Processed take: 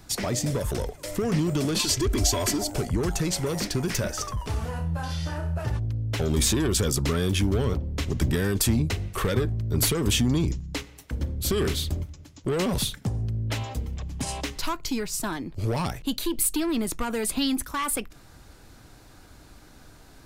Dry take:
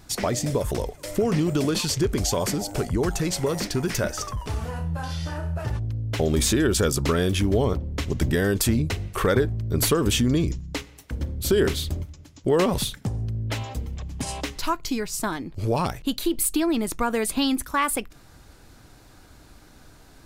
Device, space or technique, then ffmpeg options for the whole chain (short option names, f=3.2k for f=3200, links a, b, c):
one-band saturation: -filter_complex "[0:a]asettb=1/sr,asplit=3[a][b][c];[a]atrim=end=1.794[d];[b]atrim=start=1.79:end=2.7,asetpts=PTS-STARTPTS,afade=t=in:d=0.004:c=qsin,afade=t=out:st=0.906:d=0.004:c=qsin,aecho=1:1:3:0.93,atrim=end_sample=40131[e];[c]atrim=start=2.696[f];[d][e]acrossfade=d=0.004:c1=hsin:c2=qsin[g];[g][f]acrossfade=d=0.004:c1=qsin:c2=hsin,acrossover=split=220|2600[h][i][j];[i]asoftclip=type=tanh:threshold=-25.5dB[k];[h][k][j]amix=inputs=3:normalize=0"